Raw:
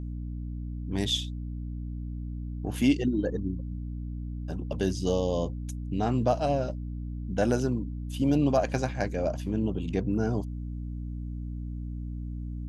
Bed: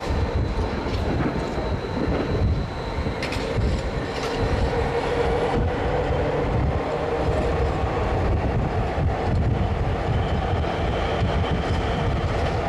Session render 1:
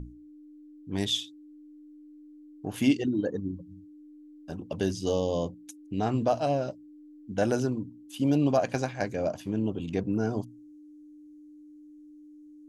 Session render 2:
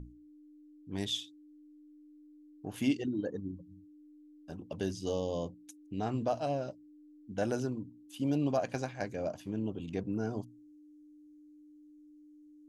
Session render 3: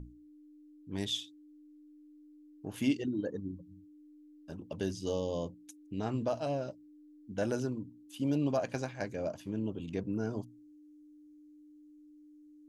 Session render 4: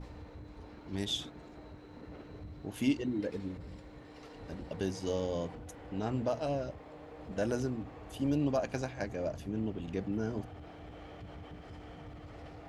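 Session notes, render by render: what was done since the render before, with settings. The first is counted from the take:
notches 60/120/180/240 Hz
gain -6.5 dB
notch 740 Hz, Q 12
add bed -26 dB

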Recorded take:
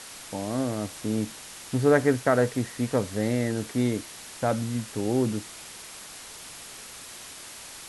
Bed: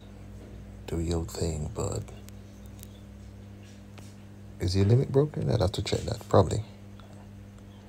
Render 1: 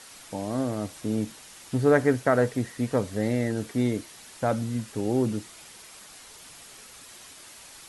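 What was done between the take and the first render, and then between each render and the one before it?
denoiser 6 dB, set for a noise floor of -43 dBFS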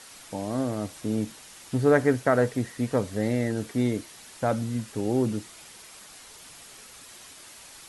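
nothing audible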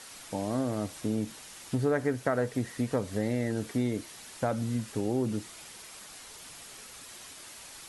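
compressor 3:1, threshold -26 dBFS, peak gain reduction 8.5 dB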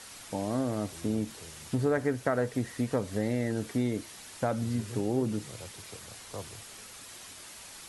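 add bed -20.5 dB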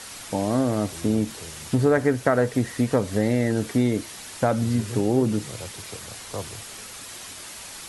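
gain +8 dB

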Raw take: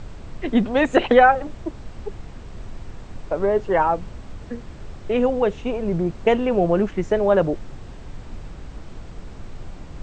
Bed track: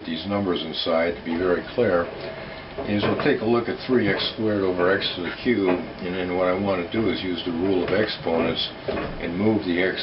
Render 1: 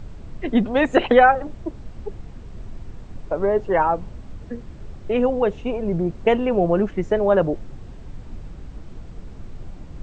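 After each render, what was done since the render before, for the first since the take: denoiser 6 dB, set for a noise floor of -39 dBFS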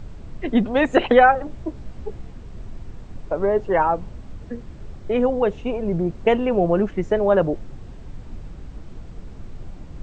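1.5–2.32 doubler 16 ms -7 dB; 4.99–5.42 notch 2700 Hz, Q 8.6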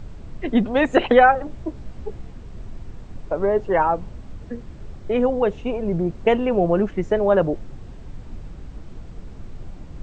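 nothing audible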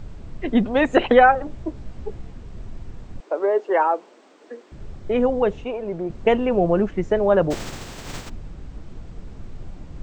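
3.2–4.72 steep high-pass 310 Hz; 5.64–6.1 tone controls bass -14 dB, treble -4 dB; 7.5–8.28 spectral contrast lowered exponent 0.48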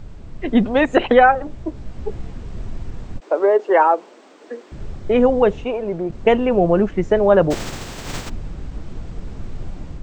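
AGC gain up to 6.5 dB; ending taper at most 540 dB/s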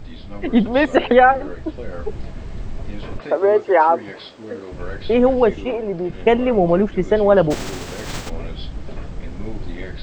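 add bed track -13 dB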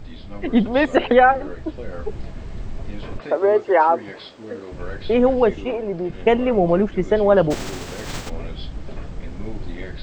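gain -1.5 dB

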